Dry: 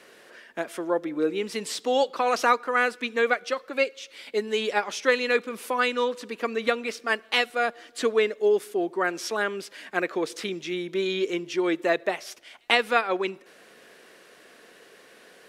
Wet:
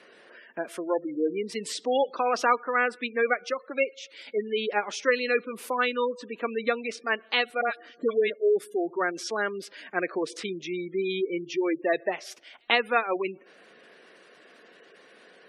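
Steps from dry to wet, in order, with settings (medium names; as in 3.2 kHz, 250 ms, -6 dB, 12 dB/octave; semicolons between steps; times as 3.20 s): 7.61–8.30 s: phase dispersion highs, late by 69 ms, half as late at 1.2 kHz; spectral gate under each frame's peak -20 dB strong; trim -1.5 dB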